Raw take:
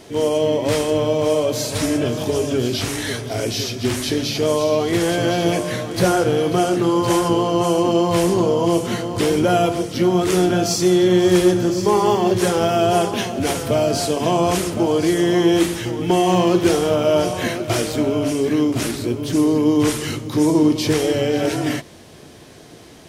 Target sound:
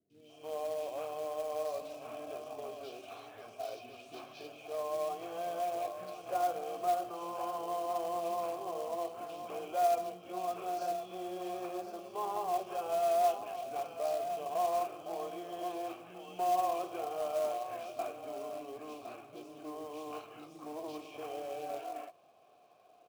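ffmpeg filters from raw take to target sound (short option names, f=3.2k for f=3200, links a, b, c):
-filter_complex "[0:a]asplit=3[a][b][c];[a]bandpass=f=730:t=q:w=8,volume=0dB[d];[b]bandpass=f=1.09k:t=q:w=8,volume=-6dB[e];[c]bandpass=f=2.44k:t=q:w=8,volume=-9dB[f];[d][e][f]amix=inputs=3:normalize=0,acrossover=split=160|1500|4100[g][h][i][j];[g]alimiter=level_in=31dB:limit=-24dB:level=0:latency=1,volume=-31dB[k];[k][h][i][j]amix=inputs=4:normalize=0,acrossover=split=270|2700[l][m][n];[n]adelay=100[o];[m]adelay=290[p];[l][p][o]amix=inputs=3:normalize=0,acrusher=bits=4:mode=log:mix=0:aa=0.000001,volume=-7.5dB"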